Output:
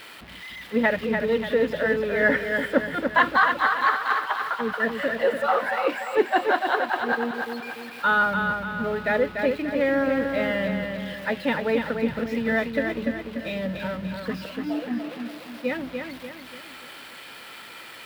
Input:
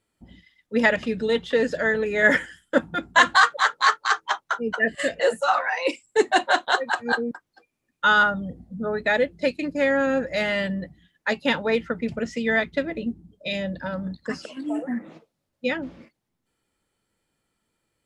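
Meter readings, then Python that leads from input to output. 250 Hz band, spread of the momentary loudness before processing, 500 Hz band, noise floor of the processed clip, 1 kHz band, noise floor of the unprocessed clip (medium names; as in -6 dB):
+1.0 dB, 13 LU, 0.0 dB, -43 dBFS, -0.5 dB, -79 dBFS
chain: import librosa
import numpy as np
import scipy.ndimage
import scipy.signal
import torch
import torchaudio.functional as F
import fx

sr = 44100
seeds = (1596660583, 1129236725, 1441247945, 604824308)

y = x + 0.5 * 10.0 ** (-16.5 / 20.0) * np.diff(np.sign(x), prepend=np.sign(x[:1]))
y = fx.air_absorb(y, sr, metres=450.0)
y = fx.echo_feedback(y, sr, ms=292, feedback_pct=46, wet_db=-5.5)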